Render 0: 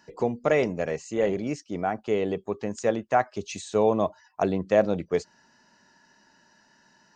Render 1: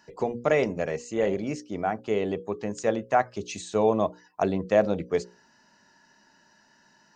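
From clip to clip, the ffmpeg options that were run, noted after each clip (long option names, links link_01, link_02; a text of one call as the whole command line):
ffmpeg -i in.wav -af "bandreject=frequency=60:width_type=h:width=6,bandreject=frequency=120:width_type=h:width=6,bandreject=frequency=180:width_type=h:width=6,bandreject=frequency=240:width_type=h:width=6,bandreject=frequency=300:width_type=h:width=6,bandreject=frequency=360:width_type=h:width=6,bandreject=frequency=420:width_type=h:width=6,bandreject=frequency=480:width_type=h:width=6,bandreject=frequency=540:width_type=h:width=6" out.wav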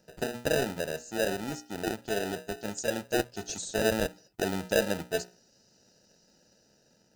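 ffmpeg -i in.wav -filter_complex "[0:a]acrossover=split=3700[link_01][link_02];[link_01]acrusher=samples=40:mix=1:aa=0.000001[link_03];[link_02]dynaudnorm=framelen=640:gausssize=5:maxgain=9dB[link_04];[link_03][link_04]amix=inputs=2:normalize=0,volume=-5dB" out.wav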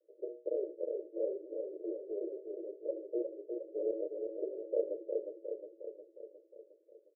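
ffmpeg -i in.wav -af "asuperpass=centerf=440:order=20:qfactor=1.5,aecho=1:1:359|718|1077|1436|1795|2154|2513|2872:0.562|0.332|0.196|0.115|0.0681|0.0402|0.0237|0.014,volume=-5.5dB" out.wav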